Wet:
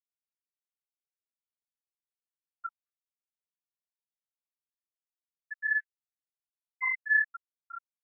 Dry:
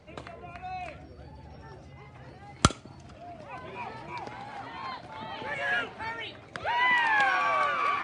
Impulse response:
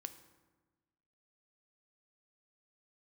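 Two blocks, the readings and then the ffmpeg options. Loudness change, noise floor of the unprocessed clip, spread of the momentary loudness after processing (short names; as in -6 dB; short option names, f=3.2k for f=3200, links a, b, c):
+0.5 dB, -50 dBFS, 21 LU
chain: -af "afftfilt=real='hypot(re,im)*cos(PI*b)':imag='0':win_size=512:overlap=0.75,aecho=1:1:6.4:0.6,aecho=1:1:214|428|642|856|1070:0.188|0.0942|0.0471|0.0235|0.0118,afftfilt=real='re*gte(hypot(re,im),0.00631)':imag='im*gte(hypot(re,im),0.00631)':win_size=1024:overlap=0.75,flanger=delay=7.4:depth=6.9:regen=-16:speed=1.2:shape=sinusoidal,adynamicequalizer=threshold=0.00316:dfrequency=1600:dqfactor=5.9:tfrequency=1600:tqfactor=5.9:attack=5:release=100:ratio=0.375:range=1.5:mode=boostabove:tftype=bell,aresample=8000,aeval=exprs='0.126*(abs(mod(val(0)/0.126+3,4)-2)-1)':c=same,aresample=44100,afftfilt=real='re*gte(hypot(re,im),0.224)':imag='im*gte(hypot(re,im),0.224)':win_size=1024:overlap=0.75,afftfilt=real='re*gte(b*sr/1024,250*pow(1600/250,0.5+0.5*sin(2*PI*0.38*pts/sr)))':imag='im*gte(b*sr/1024,250*pow(1600/250,0.5+0.5*sin(2*PI*0.38*pts/sr)))':win_size=1024:overlap=0.75,volume=3.5dB"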